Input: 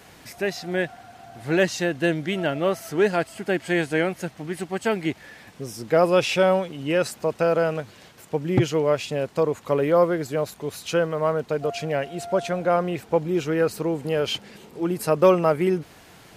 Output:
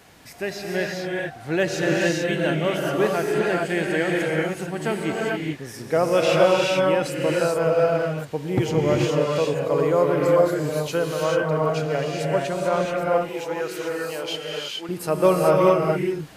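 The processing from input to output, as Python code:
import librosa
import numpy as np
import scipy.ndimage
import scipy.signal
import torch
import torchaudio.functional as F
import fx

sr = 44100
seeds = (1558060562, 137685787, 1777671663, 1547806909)

y = fx.highpass(x, sr, hz=900.0, slope=6, at=(12.85, 14.89))
y = fx.rev_gated(y, sr, seeds[0], gate_ms=460, shape='rising', drr_db=-2.5)
y = y * librosa.db_to_amplitude(-2.5)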